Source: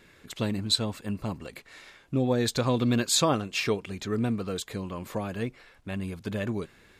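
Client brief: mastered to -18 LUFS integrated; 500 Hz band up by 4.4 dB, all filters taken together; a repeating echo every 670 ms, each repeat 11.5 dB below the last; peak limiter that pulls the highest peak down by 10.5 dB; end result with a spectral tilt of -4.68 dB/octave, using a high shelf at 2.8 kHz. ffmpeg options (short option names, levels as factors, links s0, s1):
-af "equalizer=f=500:t=o:g=5,highshelf=f=2800:g=3,alimiter=limit=0.133:level=0:latency=1,aecho=1:1:670|1340|2010:0.266|0.0718|0.0194,volume=3.76"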